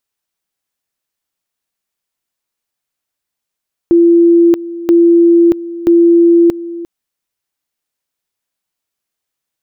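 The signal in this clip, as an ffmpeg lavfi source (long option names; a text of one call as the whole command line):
ffmpeg -f lavfi -i "aevalsrc='pow(10,(-4-16.5*gte(mod(t,0.98),0.63))/20)*sin(2*PI*340*t)':duration=2.94:sample_rate=44100" out.wav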